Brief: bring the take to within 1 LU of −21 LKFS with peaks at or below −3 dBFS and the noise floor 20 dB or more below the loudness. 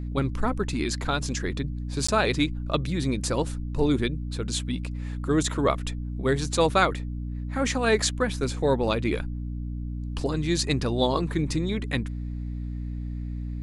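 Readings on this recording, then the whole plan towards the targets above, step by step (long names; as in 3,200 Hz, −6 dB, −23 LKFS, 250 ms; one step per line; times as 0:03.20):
number of dropouts 1; longest dropout 15 ms; mains hum 60 Hz; hum harmonics up to 300 Hz; level of the hum −29 dBFS; integrated loudness −27.0 LKFS; sample peak −7.5 dBFS; target loudness −21.0 LKFS
→ repair the gap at 0:02.07, 15 ms
hum removal 60 Hz, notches 5
level +6 dB
brickwall limiter −3 dBFS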